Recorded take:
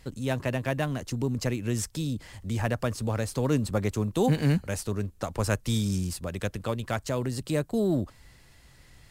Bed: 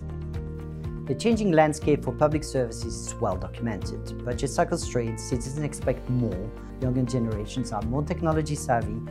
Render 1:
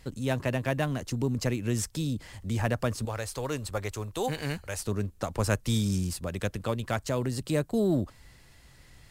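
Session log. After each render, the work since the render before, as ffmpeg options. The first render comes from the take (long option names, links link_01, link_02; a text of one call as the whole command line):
ffmpeg -i in.wav -filter_complex "[0:a]asettb=1/sr,asplit=3[link_01][link_02][link_03];[link_01]atrim=end=3.054[link_04];[link_02]atrim=start=3.05:end=4.8,asetpts=PTS-STARTPTS,afade=type=in:duration=0.004:curve=qsin,afade=type=out:start_time=1.746:duration=0.004:curve=qsin,equalizer=frequency=200:width_type=o:width=1.7:gain=-14.5[link_05];[link_03]atrim=start=4.796[link_06];[link_04][link_05]acrossfade=duration=0.004:curve1=hsin:curve2=qsin[link_07];[link_07][link_06]acrossfade=duration=0.004:curve1=qsin:curve2=hsin" out.wav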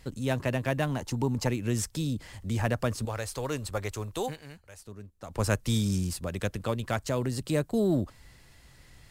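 ffmpeg -i in.wav -filter_complex "[0:a]asettb=1/sr,asplit=3[link_01][link_02][link_03];[link_01]atrim=end=0.894[link_04];[link_02]atrim=start=0.89:end=1.48,asetpts=PTS-STARTPTS,afade=type=in:duration=0.004:curve=qsin,afade=type=out:start_time=0.586:duration=0.004:curve=qsin,equalizer=frequency=880:width_type=o:width=0.27:gain=13[link_05];[link_03]atrim=start=1.476[link_06];[link_04][link_05]acrossfade=duration=0.004:curve1=hsin:curve2=qsin[link_07];[link_07][link_06]acrossfade=duration=0.004:curve1=qsin:curve2=hsin,asplit=3[link_08][link_09][link_10];[link_08]atrim=end=4.39,asetpts=PTS-STARTPTS,afade=type=out:start_time=4.19:duration=0.2:silence=0.188365[link_11];[link_09]atrim=start=4.39:end=5.22,asetpts=PTS-STARTPTS,volume=-14.5dB[link_12];[link_10]atrim=start=5.22,asetpts=PTS-STARTPTS,afade=type=in:duration=0.2:silence=0.188365[link_13];[link_11][link_12][link_13]concat=n=3:v=0:a=1" out.wav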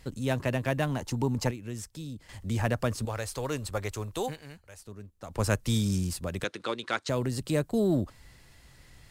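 ffmpeg -i in.wav -filter_complex "[0:a]asettb=1/sr,asplit=3[link_01][link_02][link_03];[link_01]atrim=end=6.444[link_04];[link_02]atrim=start=6.44:end=7.09,asetpts=PTS-STARTPTS,afade=type=in:duration=0.004:curve=qsin,afade=type=out:start_time=0.646:duration=0.004:curve=qsin,highpass=330,equalizer=frequency=340:width_type=q:width=4:gain=5,equalizer=frequency=650:width_type=q:width=4:gain=-6,equalizer=frequency=1400:width_type=q:width=4:gain=5,equalizer=frequency=2200:width_type=q:width=4:gain=4,equalizer=frequency=3800:width_type=q:width=4:gain=9,equalizer=frequency=7700:width_type=q:width=4:gain=-5,lowpass=frequency=8800:width=0.5412,lowpass=frequency=8800:width=1.3066[link_05];[link_03]atrim=start=7.086[link_06];[link_04][link_05]acrossfade=duration=0.004:curve1=hsin:curve2=qsin[link_07];[link_07][link_06]acrossfade=duration=0.004:curve1=qsin:curve2=hsin,asplit=3[link_08][link_09][link_10];[link_08]atrim=end=1.512[link_11];[link_09]atrim=start=1.508:end=2.292,asetpts=PTS-STARTPTS,volume=-9dB[link_12];[link_10]atrim=start=2.288[link_13];[link_11][link_12]acrossfade=duration=0.004:curve1=hsin:curve2=hsin[link_14];[link_14][link_13]acrossfade=duration=0.004:curve1=hsin:curve2=hsin" out.wav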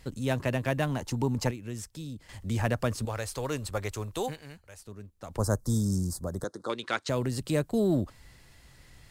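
ffmpeg -i in.wav -filter_complex "[0:a]asettb=1/sr,asplit=3[link_01][link_02][link_03];[link_01]atrim=end=5.374[link_04];[link_02]atrim=start=5.37:end=6.7,asetpts=PTS-STARTPTS,afade=type=in:duration=0.004:curve=qsin,afade=type=out:start_time=1.326:duration=0.004:curve=qsin,asuperstop=centerf=2600:order=4:qfactor=0.64[link_05];[link_03]atrim=start=6.696[link_06];[link_04][link_05]acrossfade=duration=0.004:curve1=hsin:curve2=qsin[link_07];[link_07][link_06]acrossfade=duration=0.004:curve1=qsin:curve2=hsin" out.wav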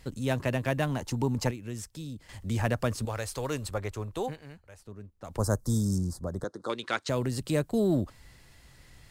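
ffmpeg -i in.wav -filter_complex "[0:a]asettb=1/sr,asplit=3[link_01][link_02][link_03];[link_01]atrim=end=3.744[link_04];[link_02]atrim=start=3.74:end=5.25,asetpts=PTS-STARTPTS,afade=type=in:duration=0.004:curve=qsin,afade=type=out:start_time=1.506:duration=0.004:curve=qsin,highshelf=frequency=2800:gain=-9[link_05];[link_03]atrim=start=5.246[link_06];[link_04][link_05]acrossfade=duration=0.004:curve1=hsin:curve2=qsin[link_07];[link_07][link_06]acrossfade=duration=0.004:curve1=qsin:curve2=hsin,asettb=1/sr,asplit=3[link_08][link_09][link_10];[link_08]atrim=end=5.984[link_11];[link_09]atrim=start=5.98:end=6.63,asetpts=PTS-STARTPTS,afade=type=in:duration=0.004:curve=qsin,afade=type=out:start_time=0.646:duration=0.004:curve=qsin,lowpass=frequency=3500:poles=1[link_12];[link_10]atrim=start=6.626[link_13];[link_11][link_12]acrossfade=duration=0.004:curve1=hsin:curve2=qsin[link_14];[link_14][link_13]acrossfade=duration=0.004:curve1=qsin:curve2=hsin" out.wav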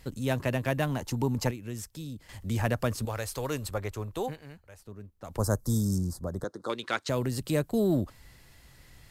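ffmpeg -i in.wav -af "equalizer=frequency=12000:width=6.5:gain=10.5" out.wav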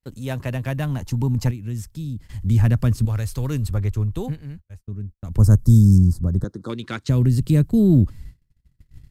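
ffmpeg -i in.wav -af "agate=range=-37dB:threshold=-50dB:ratio=16:detection=peak,asubboost=boost=9.5:cutoff=210" out.wav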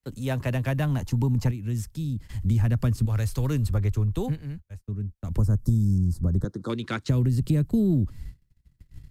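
ffmpeg -i in.wav -filter_complex "[0:a]acrossover=split=130|400|2500[link_01][link_02][link_03][link_04];[link_04]alimiter=level_in=5.5dB:limit=-24dB:level=0:latency=1:release=72,volume=-5.5dB[link_05];[link_01][link_02][link_03][link_05]amix=inputs=4:normalize=0,acompressor=threshold=-19dB:ratio=6" out.wav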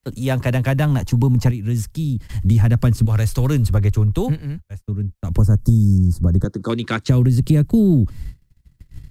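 ffmpeg -i in.wav -af "volume=8dB" out.wav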